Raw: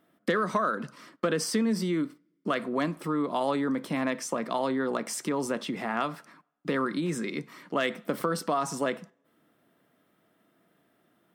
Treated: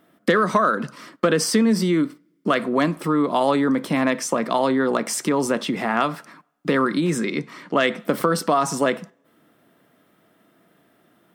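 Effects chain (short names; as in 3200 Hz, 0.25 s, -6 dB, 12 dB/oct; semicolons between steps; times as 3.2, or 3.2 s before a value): 7.24–8 Bessel low-pass 7600 Hz, order 2; gain +8.5 dB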